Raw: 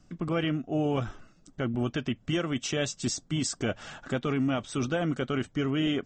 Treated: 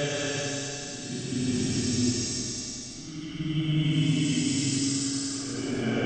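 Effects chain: Paulstretch 7.6×, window 0.25 s, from 2.84; analogue delay 98 ms, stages 4096, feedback 83%, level -10 dB; spring tank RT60 1.5 s, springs 40/44 ms, chirp 40 ms, DRR 0 dB

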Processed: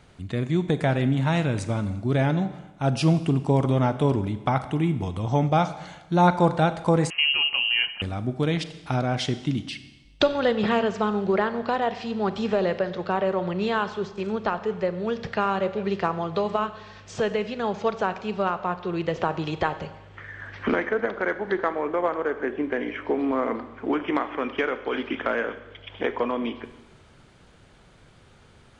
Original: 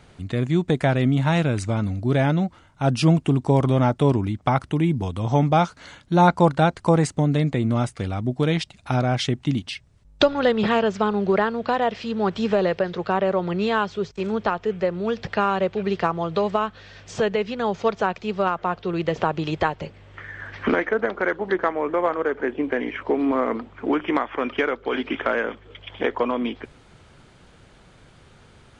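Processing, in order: Schroeder reverb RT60 1.1 s, combs from 30 ms, DRR 11.5 dB; 7.1–8.02 inverted band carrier 3000 Hz; gain -3 dB

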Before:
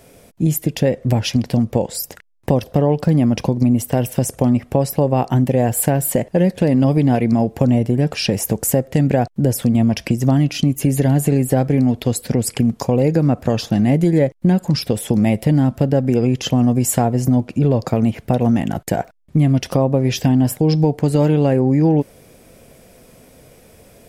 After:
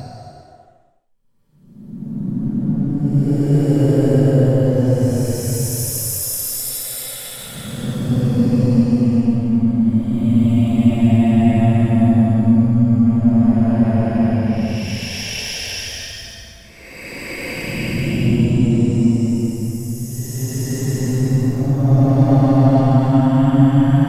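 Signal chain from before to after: half-wave gain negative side -3 dB; Paulstretch 22×, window 0.10 s, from 9.27; gain +2 dB

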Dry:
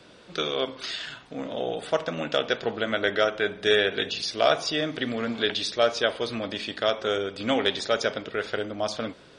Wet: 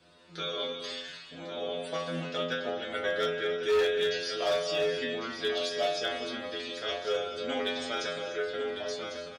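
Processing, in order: metallic resonator 83 Hz, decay 0.71 s, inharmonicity 0.002; echo 1.1 s -9.5 dB; reverb, pre-delay 3 ms, DRR 7 dB; overloaded stage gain 27.5 dB; gain +5.5 dB

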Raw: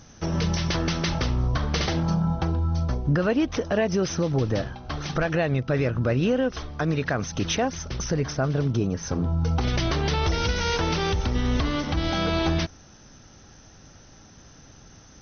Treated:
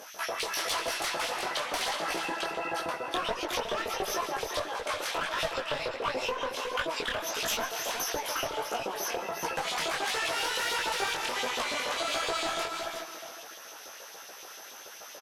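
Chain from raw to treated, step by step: bell 130 Hz -7.5 dB 0.47 oct; harmoniser +12 st -3 dB; on a send at -12.5 dB: reverb RT60 1.5 s, pre-delay 0.111 s; on the sum: LFO high-pass saw up 7 Hz 450–4000 Hz; one-sided clip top -22.5 dBFS; compressor, threshold -33 dBFS, peak gain reduction 16 dB; echo 0.365 s -6.5 dB; detuned doubles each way 51 cents; gain +7 dB

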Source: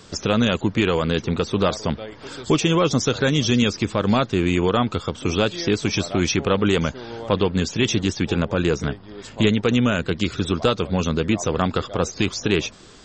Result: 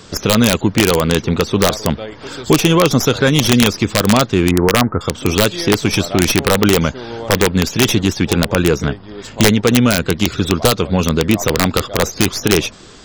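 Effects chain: tracing distortion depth 0.059 ms; 4.51–5.01 steep low-pass 1900 Hz 72 dB/oct; wrapped overs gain 9 dB; gain +6.5 dB

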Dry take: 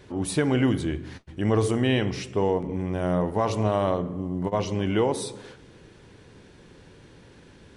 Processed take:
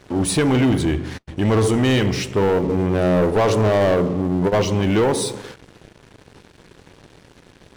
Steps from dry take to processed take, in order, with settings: 2.57–4.62 dynamic EQ 440 Hz, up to +6 dB, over -38 dBFS, Q 1.6; sample leveller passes 3; gain -1.5 dB

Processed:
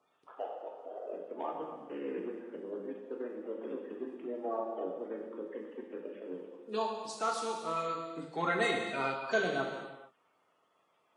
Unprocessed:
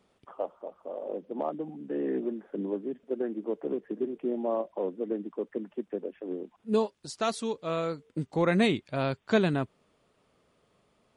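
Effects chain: bin magnitudes rounded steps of 30 dB; weighting filter A; non-linear reverb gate 0.49 s falling, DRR 0 dB; gain -4.5 dB

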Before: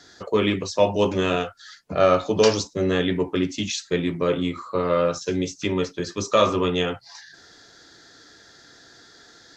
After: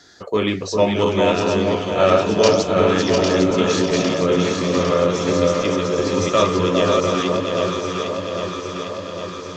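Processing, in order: regenerating reverse delay 0.351 s, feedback 60%, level -3 dB; echo with dull and thin repeats by turns 0.402 s, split 1100 Hz, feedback 80%, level -3.5 dB; gain +1 dB

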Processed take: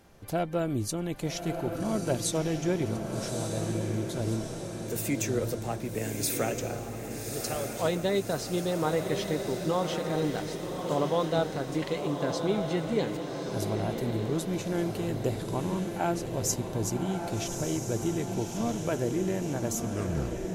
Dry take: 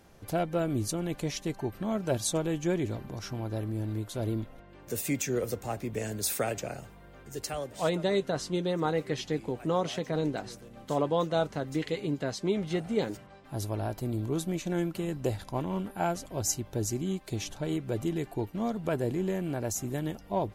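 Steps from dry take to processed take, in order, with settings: tape stop at the end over 0.77 s; diffused feedback echo 1.187 s, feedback 57%, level -5 dB

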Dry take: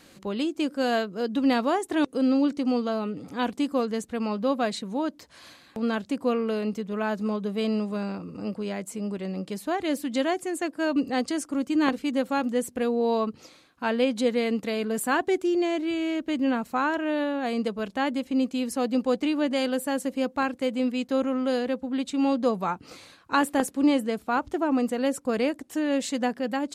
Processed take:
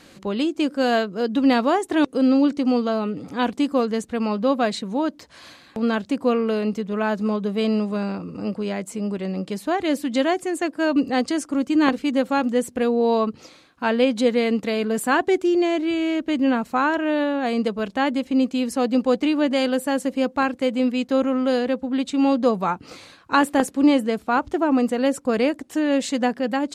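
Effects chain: high shelf 11000 Hz -9.5 dB; gain +5 dB

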